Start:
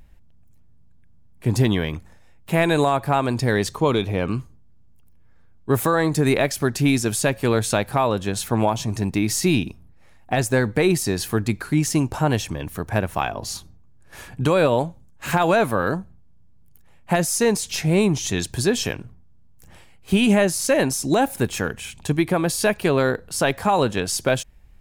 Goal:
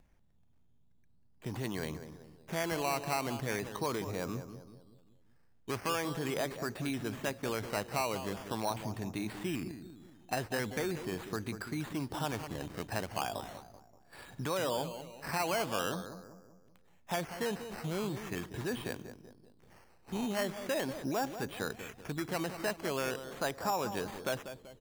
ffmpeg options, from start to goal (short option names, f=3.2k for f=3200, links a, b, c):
-filter_complex "[0:a]acrossover=split=840[a][b];[a]alimiter=limit=-19.5dB:level=0:latency=1[c];[b]equalizer=f=7.4k:w=0.52:g=-9.5[d];[c][d]amix=inputs=2:normalize=0,acrossover=split=2000|5700[e][f][g];[e]acompressor=threshold=-20dB:ratio=4[h];[f]acompressor=threshold=-41dB:ratio=4[i];[g]acompressor=threshold=-46dB:ratio=4[j];[h][i][j]amix=inputs=3:normalize=0,lowshelf=f=110:g=-11.5,asplit=2[k][l];[l]adelay=192,lowpass=f=1.3k:p=1,volume=-9.5dB,asplit=2[m][n];[n]adelay=192,lowpass=f=1.3k:p=1,volume=0.48,asplit=2[o][p];[p]adelay=192,lowpass=f=1.3k:p=1,volume=0.48,asplit=2[q][r];[r]adelay=192,lowpass=f=1.3k:p=1,volume=0.48,asplit=2[s][t];[t]adelay=192,lowpass=f=1.3k:p=1,volume=0.48[u];[m][o][q][s][u]amix=inputs=5:normalize=0[v];[k][v]amix=inputs=2:normalize=0,acrusher=samples=10:mix=1:aa=0.000001:lfo=1:lforange=6:lforate=0.41,volume=-8dB"